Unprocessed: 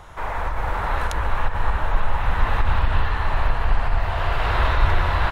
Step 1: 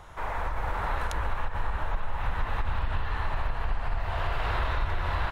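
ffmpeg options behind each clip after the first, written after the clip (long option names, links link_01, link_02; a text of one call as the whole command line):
ffmpeg -i in.wav -af "acompressor=threshold=-18dB:ratio=6,volume=-5dB" out.wav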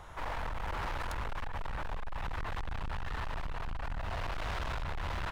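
ffmpeg -i in.wav -af "volume=32dB,asoftclip=hard,volume=-32dB,volume=-1.5dB" out.wav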